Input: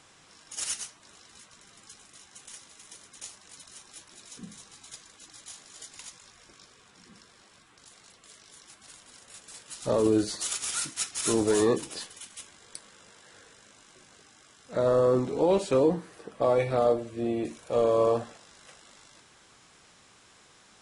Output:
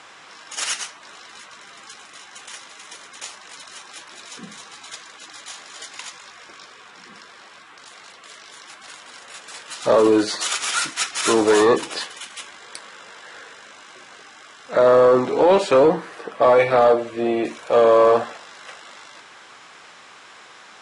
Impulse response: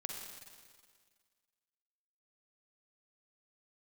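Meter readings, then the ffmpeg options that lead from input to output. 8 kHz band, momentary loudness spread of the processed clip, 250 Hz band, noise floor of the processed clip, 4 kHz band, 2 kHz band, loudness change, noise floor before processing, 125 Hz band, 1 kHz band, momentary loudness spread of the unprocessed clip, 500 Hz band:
+5.0 dB, 22 LU, +5.5 dB, −46 dBFS, +10.5 dB, +15.0 dB, +9.0 dB, −58 dBFS, 0.0 dB, +13.0 dB, 22 LU, +9.0 dB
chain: -af "aeval=exprs='0.237*(cos(1*acos(clip(val(0)/0.237,-1,1)))-cos(1*PI/2))+0.00944*(cos(5*acos(clip(val(0)/0.237,-1,1)))-cos(5*PI/2))':channel_layout=same,bandpass=frequency=1400:width_type=q:width=0.58:csg=0,apsyclip=22dB,volume=-7.5dB"

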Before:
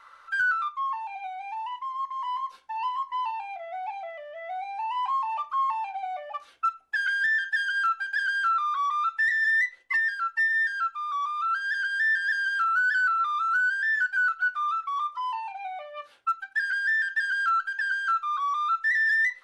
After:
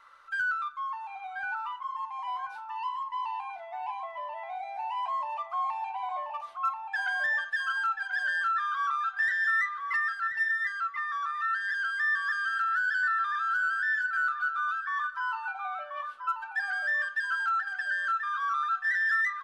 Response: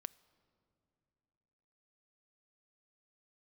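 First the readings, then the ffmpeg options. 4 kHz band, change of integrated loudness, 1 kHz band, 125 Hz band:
−4.5 dB, −3.5 dB, −3.0 dB, can't be measured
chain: -filter_complex "[0:a]asplit=2[link_01][link_02];[link_02]adelay=1034,lowpass=frequency=1700:poles=1,volume=-3.5dB,asplit=2[link_03][link_04];[link_04]adelay=1034,lowpass=frequency=1700:poles=1,volume=0.33,asplit=2[link_05][link_06];[link_06]adelay=1034,lowpass=frequency=1700:poles=1,volume=0.33,asplit=2[link_07][link_08];[link_08]adelay=1034,lowpass=frequency=1700:poles=1,volume=0.33[link_09];[link_01][link_03][link_05][link_07][link_09]amix=inputs=5:normalize=0[link_10];[1:a]atrim=start_sample=2205[link_11];[link_10][link_11]afir=irnorm=-1:irlink=0"

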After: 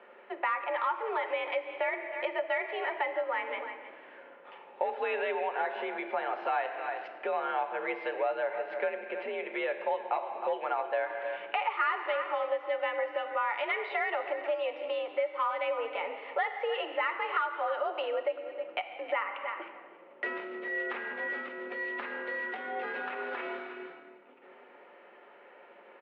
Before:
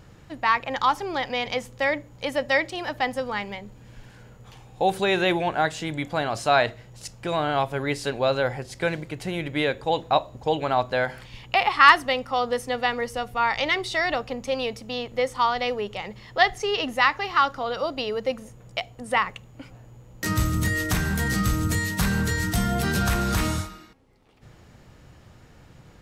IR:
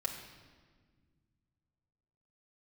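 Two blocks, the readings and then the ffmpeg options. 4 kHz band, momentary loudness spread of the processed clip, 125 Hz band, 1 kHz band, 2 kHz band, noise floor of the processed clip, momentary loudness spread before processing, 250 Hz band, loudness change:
−15.5 dB, 7 LU, below −40 dB, −8.0 dB, −8.0 dB, −55 dBFS, 9 LU, −17.0 dB, −8.5 dB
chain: -filter_complex "[0:a]aecho=1:1:314:0.15,asoftclip=type=tanh:threshold=-12.5dB,asplit=2[link_01][link_02];[1:a]atrim=start_sample=2205,asetrate=43659,aresample=44100[link_03];[link_02][link_03]afir=irnorm=-1:irlink=0,volume=-1dB[link_04];[link_01][link_04]amix=inputs=2:normalize=0,acompressor=threshold=-26dB:ratio=4,highpass=frequency=330:width_type=q:width=0.5412,highpass=frequency=330:width_type=q:width=1.307,lowpass=frequency=2700:width_type=q:width=0.5176,lowpass=frequency=2700:width_type=q:width=0.7071,lowpass=frequency=2700:width_type=q:width=1.932,afreqshift=56,volume=-3dB"

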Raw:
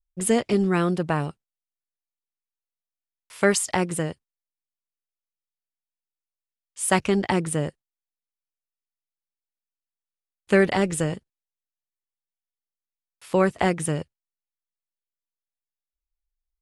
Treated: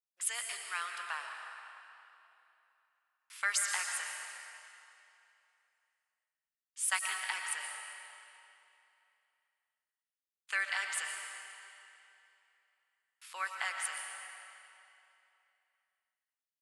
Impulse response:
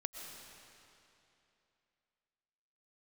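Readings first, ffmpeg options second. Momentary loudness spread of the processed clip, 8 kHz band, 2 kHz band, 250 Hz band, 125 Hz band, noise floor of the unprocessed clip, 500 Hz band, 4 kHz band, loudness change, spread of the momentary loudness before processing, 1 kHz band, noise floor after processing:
21 LU, −5.5 dB, −5.0 dB, below −40 dB, below −40 dB, below −85 dBFS, −34.0 dB, −5.0 dB, −12.5 dB, 9 LU, −12.5 dB, below −85 dBFS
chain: -filter_complex "[0:a]highpass=frequency=1200:width=0.5412,highpass=frequency=1200:width=1.3066[link_01];[1:a]atrim=start_sample=2205[link_02];[link_01][link_02]afir=irnorm=-1:irlink=0,volume=-4dB"

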